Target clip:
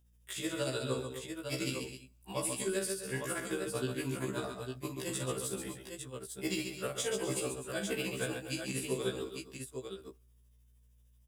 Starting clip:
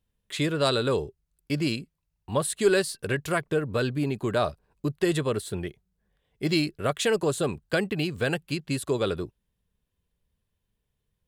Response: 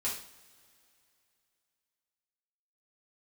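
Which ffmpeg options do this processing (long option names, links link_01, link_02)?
-filter_complex "[0:a]bass=frequency=250:gain=-11,treble=frequency=4000:gain=11,bandreject=frequency=4200:width=6,acrossover=split=260[link_01][link_02];[link_02]acompressor=threshold=-35dB:ratio=4[link_03];[link_01][link_03]amix=inputs=2:normalize=0,tremolo=f=13:d=0.87,aeval=exprs='val(0)+0.000316*(sin(2*PI*60*n/s)+sin(2*PI*2*60*n/s)/2+sin(2*PI*3*60*n/s)/3+sin(2*PI*4*60*n/s)/4+sin(2*PI*5*60*n/s)/5)':channel_layout=same,aecho=1:1:45|136|252|275|854:0.398|0.473|0.211|0.15|0.501,asplit=2[link_04][link_05];[1:a]atrim=start_sample=2205[link_06];[link_05][link_06]afir=irnorm=-1:irlink=0,volume=-27dB[link_07];[link_04][link_07]amix=inputs=2:normalize=0,afftfilt=real='re*1.73*eq(mod(b,3),0)':imag='im*1.73*eq(mod(b,3),0)':win_size=2048:overlap=0.75,volume=3dB"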